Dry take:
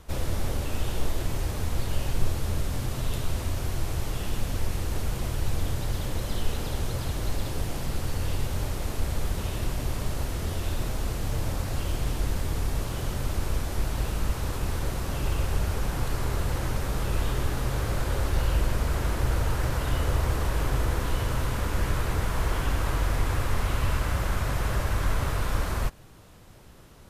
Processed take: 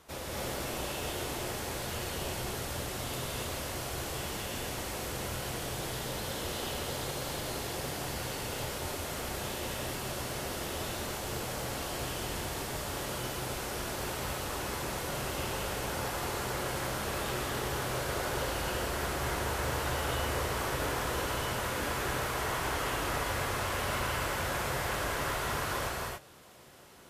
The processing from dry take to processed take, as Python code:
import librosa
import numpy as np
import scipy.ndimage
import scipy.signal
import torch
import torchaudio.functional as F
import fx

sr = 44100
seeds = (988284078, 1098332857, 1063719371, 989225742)

y = fx.highpass(x, sr, hz=380.0, slope=6)
y = fx.rev_gated(y, sr, seeds[0], gate_ms=310, shape='rising', drr_db=-2.5)
y = y * librosa.db_to_amplitude(-3.0)